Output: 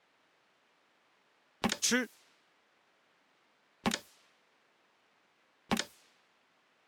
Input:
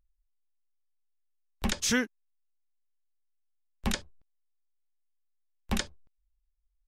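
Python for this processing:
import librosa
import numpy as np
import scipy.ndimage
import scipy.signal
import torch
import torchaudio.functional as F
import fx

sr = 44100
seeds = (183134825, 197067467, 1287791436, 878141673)

p1 = fx.quant_dither(x, sr, seeds[0], bits=8, dither='triangular')
p2 = x + F.gain(torch.from_numpy(p1), -4.0).numpy()
p3 = fx.transient(p2, sr, attack_db=8, sustain_db=2)
p4 = fx.env_lowpass(p3, sr, base_hz=2100.0, full_db=-20.5)
p5 = scipy.signal.sosfilt(scipy.signal.butter(2, 210.0, 'highpass', fs=sr, output='sos'), p4)
y = F.gain(torch.from_numpy(p5), -9.0).numpy()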